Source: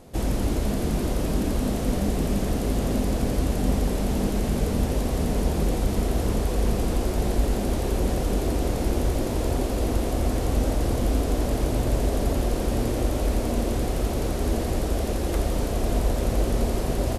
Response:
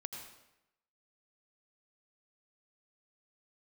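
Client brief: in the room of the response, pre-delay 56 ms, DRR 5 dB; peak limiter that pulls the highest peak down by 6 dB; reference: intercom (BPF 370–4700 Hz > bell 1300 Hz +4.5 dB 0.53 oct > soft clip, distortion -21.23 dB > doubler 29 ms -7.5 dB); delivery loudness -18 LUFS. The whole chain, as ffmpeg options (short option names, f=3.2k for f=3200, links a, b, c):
-filter_complex "[0:a]alimiter=limit=-15.5dB:level=0:latency=1,asplit=2[a][b];[1:a]atrim=start_sample=2205,adelay=56[c];[b][c]afir=irnorm=-1:irlink=0,volume=-3dB[d];[a][d]amix=inputs=2:normalize=0,highpass=370,lowpass=4.7k,equalizer=f=1.3k:t=o:w=0.53:g=4.5,asoftclip=threshold=-22.5dB,asplit=2[e][f];[f]adelay=29,volume=-7.5dB[g];[e][g]amix=inputs=2:normalize=0,volume=13.5dB"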